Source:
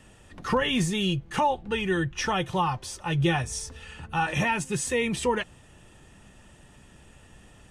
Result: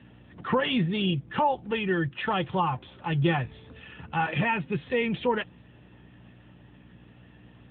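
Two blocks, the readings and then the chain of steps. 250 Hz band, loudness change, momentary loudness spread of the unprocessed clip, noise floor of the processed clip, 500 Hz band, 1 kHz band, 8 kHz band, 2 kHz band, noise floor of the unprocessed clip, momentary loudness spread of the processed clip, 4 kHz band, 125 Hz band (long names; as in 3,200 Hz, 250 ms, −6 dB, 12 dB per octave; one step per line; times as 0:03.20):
0.0 dB, −0.5 dB, 8 LU, −54 dBFS, −0.5 dB, −0.5 dB, below −40 dB, −1.0 dB, −54 dBFS, 12 LU, −3.0 dB, 0.0 dB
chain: mains hum 60 Hz, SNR 20 dB
AMR narrowband 10.2 kbit/s 8,000 Hz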